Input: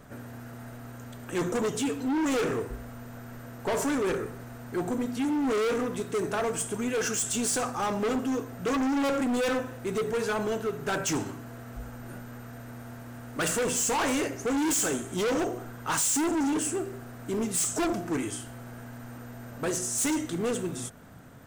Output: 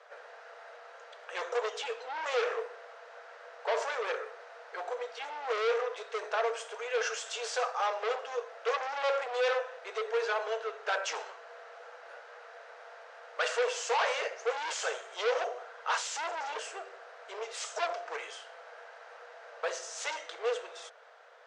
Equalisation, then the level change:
Chebyshev high-pass filter 460 Hz, order 6
low-pass filter 5,200 Hz 24 dB per octave
0.0 dB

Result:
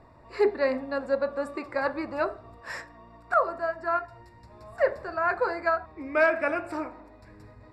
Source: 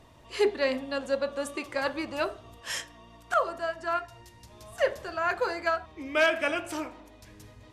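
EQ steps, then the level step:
moving average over 14 samples
tilt shelving filter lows −3 dB, about 740 Hz
+3.5 dB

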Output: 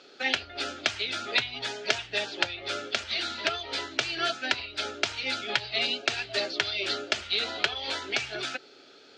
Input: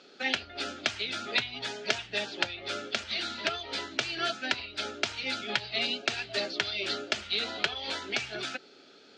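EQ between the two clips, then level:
parametric band 200 Hz −8 dB 0.6 octaves
+2.5 dB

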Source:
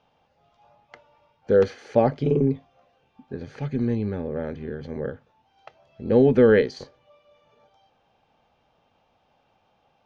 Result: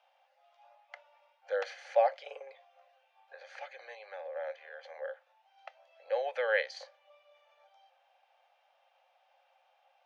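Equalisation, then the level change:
dynamic equaliser 1,200 Hz, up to −3 dB, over −39 dBFS, Q 1.2
Chebyshev high-pass with heavy ripple 520 Hz, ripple 6 dB
0.0 dB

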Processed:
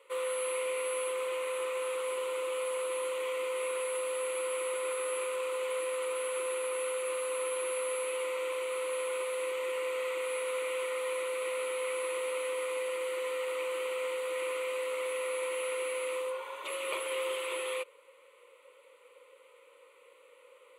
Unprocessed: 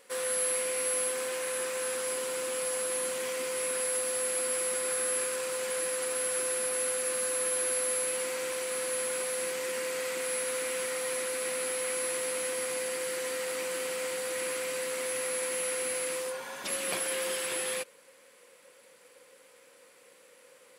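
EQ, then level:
high-pass filter 500 Hz 12 dB per octave
low-pass filter 2,000 Hz 6 dB per octave
phaser with its sweep stopped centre 1,100 Hz, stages 8
+4.5 dB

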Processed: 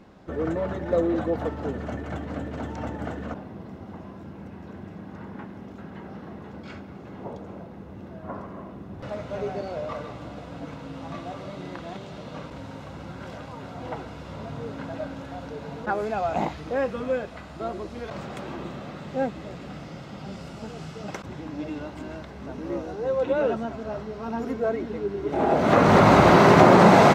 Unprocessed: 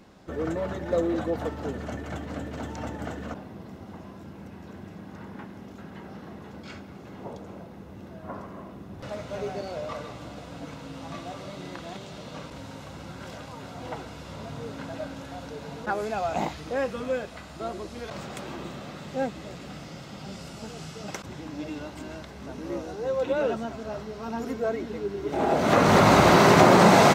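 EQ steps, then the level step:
high-shelf EQ 3,900 Hz −11.5 dB
+2.5 dB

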